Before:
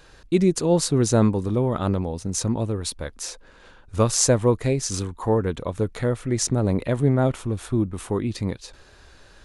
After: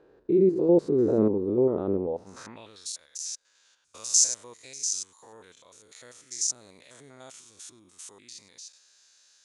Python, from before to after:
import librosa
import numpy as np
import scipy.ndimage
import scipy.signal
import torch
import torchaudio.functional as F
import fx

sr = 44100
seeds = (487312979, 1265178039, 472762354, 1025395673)

y = fx.spec_steps(x, sr, hold_ms=100)
y = fx.filter_sweep_bandpass(y, sr, from_hz=390.0, to_hz=6400.0, start_s=2.02, end_s=2.88, q=2.7)
y = F.gain(torch.from_numpy(y), 5.5).numpy()